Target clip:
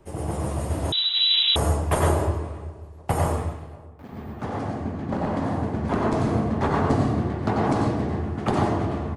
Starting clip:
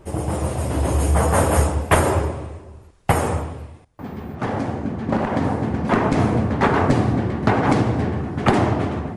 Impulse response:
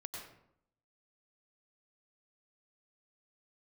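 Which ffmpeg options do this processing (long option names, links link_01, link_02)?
-filter_complex "[0:a]acrossover=split=160|1500|2700[link_01][link_02][link_03][link_04];[link_03]acompressor=threshold=-47dB:ratio=6[link_05];[link_01][link_02][link_05][link_04]amix=inputs=4:normalize=0,flanger=delay=7.3:depth=4.7:regen=-80:speed=0.29:shape=triangular,asplit=3[link_06][link_07][link_08];[link_06]afade=type=out:start_time=3.3:duration=0.02[link_09];[link_07]aeval=exprs='sgn(val(0))*max(abs(val(0))-0.0075,0)':channel_layout=same,afade=type=in:start_time=3.3:duration=0.02,afade=type=out:start_time=4.1:duration=0.02[link_10];[link_08]afade=type=in:start_time=4.1:duration=0.02[link_11];[link_09][link_10][link_11]amix=inputs=3:normalize=0,asplit=2[link_12][link_13];[link_13]adelay=536,lowpass=frequency=970:poles=1,volume=-21dB,asplit=2[link_14][link_15];[link_15]adelay=536,lowpass=frequency=970:poles=1,volume=0.55,asplit=2[link_16][link_17];[link_17]adelay=536,lowpass=frequency=970:poles=1,volume=0.55,asplit=2[link_18][link_19];[link_19]adelay=536,lowpass=frequency=970:poles=1,volume=0.55[link_20];[link_12][link_14][link_16][link_18][link_20]amix=inputs=5:normalize=0[link_21];[1:a]atrim=start_sample=2205,afade=type=out:start_time=0.2:duration=0.01,atrim=end_sample=9261[link_22];[link_21][link_22]afir=irnorm=-1:irlink=0,asettb=1/sr,asplit=3[link_23][link_24][link_25];[link_23]atrim=end=0.924[link_26];[link_24]atrim=start=0.92:end=1.56,asetpts=PTS-STARTPTS,afade=type=in:duration=0.004:curve=qsin,afade=type=out:start_time=0.636:duration=0.004:curve=qsin,lowpass=frequency=3400:width_type=q:width=0.5098,lowpass=frequency=3400:width_type=q:width=0.6013,lowpass=frequency=3400:width_type=q:width=0.9,lowpass=frequency=3400:width_type=q:width=2.563,afreqshift=-4000[link_27];[link_25]atrim=start=1.556[link_28];[link_26][link_27]acrossfade=duration=0.004:curve1=hsin:curve2=qsin[link_29];[link_29][link_28]acrossfade=duration=0.004:curve1=qsin:curve2=hsin,volume=3dB"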